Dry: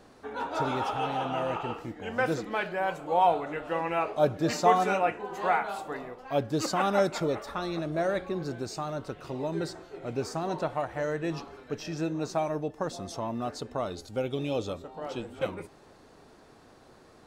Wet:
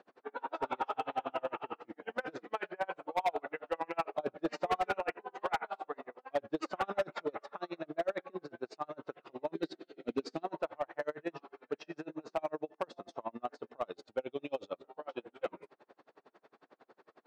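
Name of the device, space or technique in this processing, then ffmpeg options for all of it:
helicopter radio: -filter_complex "[0:a]asettb=1/sr,asplit=3[link_01][link_02][link_03];[link_01]atrim=end=9.554[link_04];[link_02]atrim=start=9.55:end=10.43,asetpts=PTS-STARTPTS,afade=type=in:duration=0.004:curve=qsin,afade=type=out:start_time=0.876:duration=0.004:curve=qsin,equalizer=frequency=250:width_type=o:width=1:gain=12,equalizer=frequency=1000:width_type=o:width=1:gain=-10,equalizer=frequency=4000:width_type=o:width=1:gain=11,equalizer=frequency=8000:width_type=o:width=1:gain=3[link_05];[link_03]atrim=start=10.426[link_06];[link_04][link_05]acrossfade=duration=0.004:curve1=hsin:curve2=qsin[link_07];[link_07][link_06]acrossfade=duration=0.004:curve1=qsin:curve2=hsin,highpass=350,lowpass=2700,aeval=exprs='val(0)*pow(10,-36*(0.5-0.5*cos(2*PI*11*n/s))/20)':channel_layout=same,asoftclip=type=hard:threshold=-26dB,volume=1dB"

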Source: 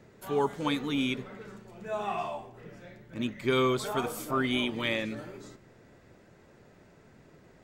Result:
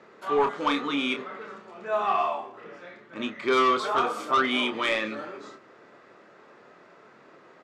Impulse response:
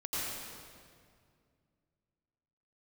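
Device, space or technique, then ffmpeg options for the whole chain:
intercom: -filter_complex "[0:a]highpass=350,lowpass=4400,equalizer=frequency=1200:width_type=o:width=0.42:gain=9,asoftclip=type=tanh:threshold=-21.5dB,asplit=2[link_01][link_02];[link_02]adelay=28,volume=-7dB[link_03];[link_01][link_03]amix=inputs=2:normalize=0,volume=5.5dB"

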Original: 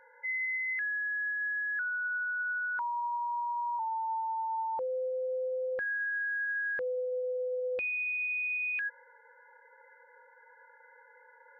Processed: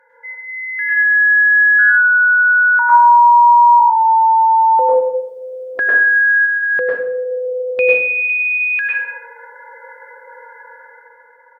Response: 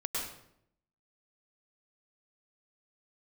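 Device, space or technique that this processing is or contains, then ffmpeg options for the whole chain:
far-field microphone of a smart speaker: -filter_complex "[0:a]asplit=3[link_01][link_02][link_03];[link_01]afade=type=out:start_time=4.99:duration=0.02[link_04];[link_02]aecho=1:1:2.9:1,afade=type=in:start_time=4.99:duration=0.02,afade=type=out:start_time=6.45:duration=0.02[link_05];[link_03]afade=type=in:start_time=6.45:duration=0.02[link_06];[link_04][link_05][link_06]amix=inputs=3:normalize=0[link_07];[1:a]atrim=start_sample=2205[link_08];[link_07][link_08]afir=irnorm=-1:irlink=0,highpass=140,dynaudnorm=framelen=200:gausssize=9:maxgain=11dB,volume=5dB" -ar 48000 -c:a libopus -b:a 48k

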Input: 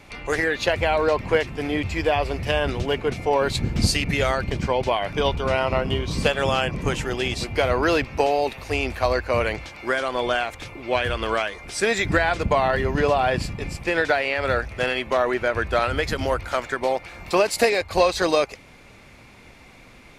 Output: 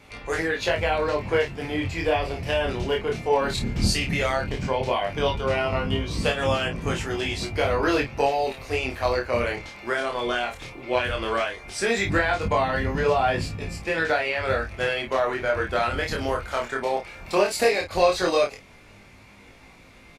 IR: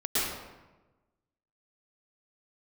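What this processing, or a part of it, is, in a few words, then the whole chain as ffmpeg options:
double-tracked vocal: -filter_complex "[0:a]asplit=2[link_01][link_02];[link_02]adelay=30,volume=-6dB[link_03];[link_01][link_03]amix=inputs=2:normalize=0,flanger=delay=18.5:depth=6.9:speed=0.15"

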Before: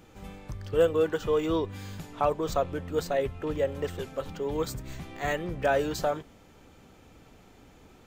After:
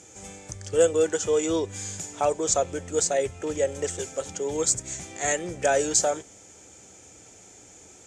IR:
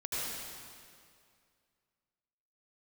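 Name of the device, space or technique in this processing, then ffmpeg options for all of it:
car door speaker: -af "highpass=100,equalizer=frequency=150:width_type=q:width=4:gain=-10,equalizer=frequency=240:width_type=q:width=4:gain=-9,equalizer=frequency=1100:width_type=q:width=4:gain=-9,equalizer=frequency=2300:width_type=q:width=4:gain=4,equalizer=frequency=3400:width_type=q:width=4:gain=9,lowpass=frequency=8400:width=0.5412,lowpass=frequency=8400:width=1.3066,highshelf=frequency=5000:width_type=q:width=3:gain=12.5,volume=3.5dB"

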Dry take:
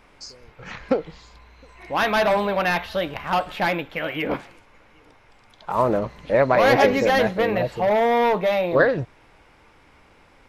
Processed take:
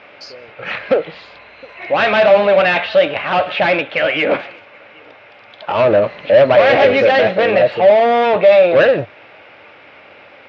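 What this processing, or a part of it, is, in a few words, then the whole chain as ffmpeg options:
overdrive pedal into a guitar cabinet: -filter_complex "[0:a]asplit=2[link_01][link_02];[link_02]highpass=frequency=720:poles=1,volume=23dB,asoftclip=type=tanh:threshold=-4.5dB[link_03];[link_01][link_03]amix=inputs=2:normalize=0,lowpass=frequency=3200:poles=1,volume=-6dB,highpass=100,equalizer=frequency=100:width_type=q:width=4:gain=8,equalizer=frequency=590:width_type=q:width=4:gain=8,equalizer=frequency=990:width_type=q:width=4:gain=-7,equalizer=frequency=2600:width_type=q:width=4:gain=5,lowpass=frequency=4300:width=0.5412,lowpass=frequency=4300:width=1.3066,volume=-2dB"

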